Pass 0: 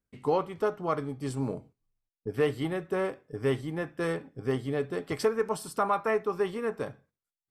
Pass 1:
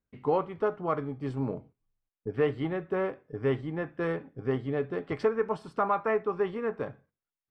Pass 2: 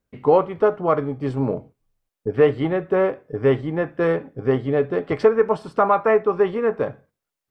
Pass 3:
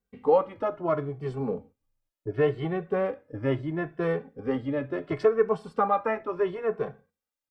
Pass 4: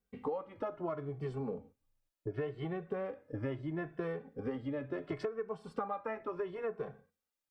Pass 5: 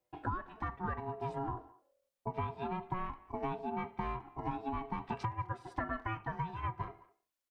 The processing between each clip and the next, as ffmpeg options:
-af "lowpass=2.5k"
-af "equalizer=f=550:t=o:w=0.89:g=4.5,volume=8dB"
-filter_complex "[0:a]asplit=2[a][b];[b]adelay=2.2,afreqshift=0.72[c];[a][c]amix=inputs=2:normalize=1,volume=-4dB"
-af "acompressor=threshold=-33dB:ratio=12,volume=-1dB"
-filter_complex "[0:a]aeval=exprs='val(0)*sin(2*PI*550*n/s)':c=same,asplit=2[a][b];[b]adelay=210,highpass=300,lowpass=3.4k,asoftclip=type=hard:threshold=-33.5dB,volume=-21dB[c];[a][c]amix=inputs=2:normalize=0,volume=3dB"

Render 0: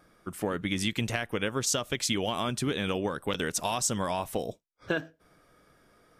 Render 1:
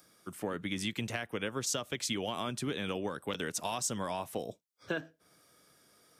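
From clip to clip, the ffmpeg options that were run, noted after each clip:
-filter_complex "[0:a]highpass=98,acrossover=split=250|1200|3700[a][b][c][d];[d]acompressor=mode=upward:threshold=-49dB:ratio=2.5[e];[a][b][c][e]amix=inputs=4:normalize=0,volume=-5.5dB"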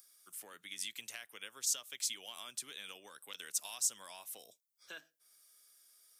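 -af "aderivative,volume=1.5dB"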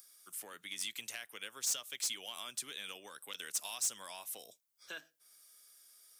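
-af "asoftclip=type=tanh:threshold=-31.5dB,volume=3.5dB"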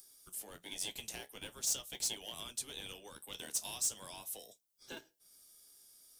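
-filter_complex "[0:a]flanger=delay=9.1:depth=5:regen=-51:speed=0.42:shape=sinusoidal,acrossover=split=180|1200|2300[a][b][c][d];[c]acrusher=samples=35:mix=1:aa=0.000001[e];[a][b][e][d]amix=inputs=4:normalize=0,volume=4.5dB"

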